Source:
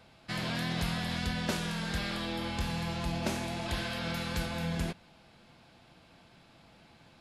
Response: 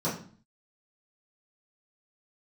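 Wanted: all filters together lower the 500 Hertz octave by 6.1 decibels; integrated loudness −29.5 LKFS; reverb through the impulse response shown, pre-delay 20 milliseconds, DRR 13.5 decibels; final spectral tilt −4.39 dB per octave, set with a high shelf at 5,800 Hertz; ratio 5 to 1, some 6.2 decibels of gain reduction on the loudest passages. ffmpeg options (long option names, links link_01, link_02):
-filter_complex "[0:a]equalizer=frequency=500:width_type=o:gain=-8.5,highshelf=frequency=5800:gain=8,acompressor=threshold=-35dB:ratio=5,asplit=2[link_01][link_02];[1:a]atrim=start_sample=2205,adelay=20[link_03];[link_02][link_03]afir=irnorm=-1:irlink=0,volume=-22.5dB[link_04];[link_01][link_04]amix=inputs=2:normalize=0,volume=7dB"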